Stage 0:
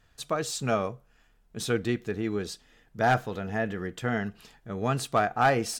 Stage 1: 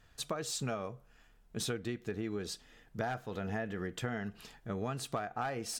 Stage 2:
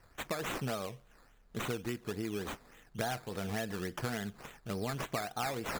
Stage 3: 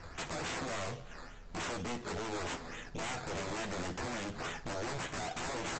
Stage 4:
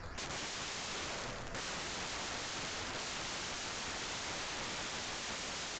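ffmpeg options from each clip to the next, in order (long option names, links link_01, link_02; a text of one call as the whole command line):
ffmpeg -i in.wav -af "acompressor=threshold=-33dB:ratio=12" out.wav
ffmpeg -i in.wav -filter_complex "[0:a]highshelf=frequency=3700:gain=8,acrossover=split=880|1200[link_01][link_02][link_03];[link_03]alimiter=level_in=3.5dB:limit=-24dB:level=0:latency=1:release=179,volume=-3.5dB[link_04];[link_01][link_02][link_04]amix=inputs=3:normalize=0,acrusher=samples=12:mix=1:aa=0.000001:lfo=1:lforange=7.2:lforate=3.5" out.wav
ffmpeg -i in.wav -af "acompressor=threshold=-39dB:ratio=6,aresample=16000,aeval=exprs='0.0299*sin(PI/2*5.62*val(0)/0.0299)':channel_layout=same,aresample=44100,aecho=1:1:12|59:0.473|0.2,volume=-5.5dB" out.wav
ffmpeg -i in.wav -af "aecho=1:1:190|361|514.9|653.4|778.1:0.631|0.398|0.251|0.158|0.1,aeval=exprs='(mod(75*val(0)+1,2)-1)/75':channel_layout=same,volume=2.5dB" -ar 16000 -c:a pcm_alaw out.wav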